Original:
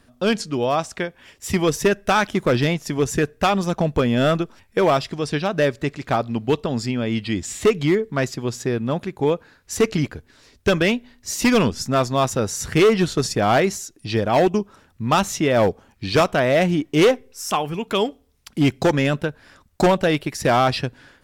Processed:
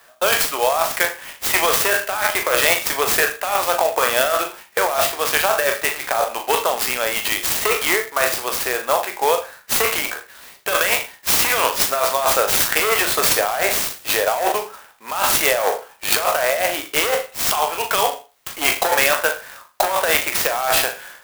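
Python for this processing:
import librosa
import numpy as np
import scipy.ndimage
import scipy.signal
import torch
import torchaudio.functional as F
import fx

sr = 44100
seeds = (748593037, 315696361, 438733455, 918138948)

y = fx.spec_trails(x, sr, decay_s=0.31)
y = scipy.signal.sosfilt(scipy.signal.butter(4, 620.0, 'highpass', fs=sr, output='sos'), y)
y = fx.over_compress(y, sr, threshold_db=-25.0, ratio=-1.0)
y = fx.room_flutter(y, sr, wall_m=6.8, rt60_s=0.25)
y = fx.clock_jitter(y, sr, seeds[0], jitter_ms=0.049)
y = y * librosa.db_to_amplitude(7.5)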